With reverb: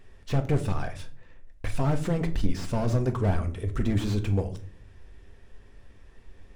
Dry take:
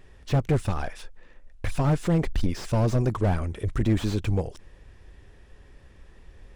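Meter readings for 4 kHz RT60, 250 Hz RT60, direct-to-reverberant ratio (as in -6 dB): 0.30 s, 0.75 s, 6.0 dB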